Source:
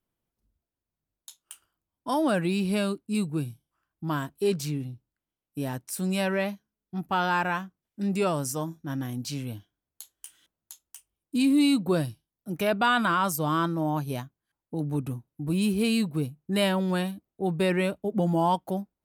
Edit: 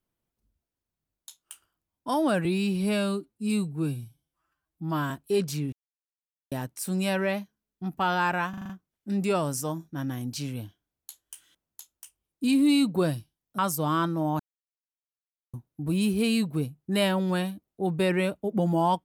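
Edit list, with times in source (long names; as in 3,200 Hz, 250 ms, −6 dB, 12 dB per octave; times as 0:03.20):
0:02.45–0:04.22: time-stretch 1.5×
0:04.84–0:05.63: silence
0:07.61: stutter 0.04 s, 6 plays
0:12.50–0:13.19: remove
0:14.00–0:15.14: silence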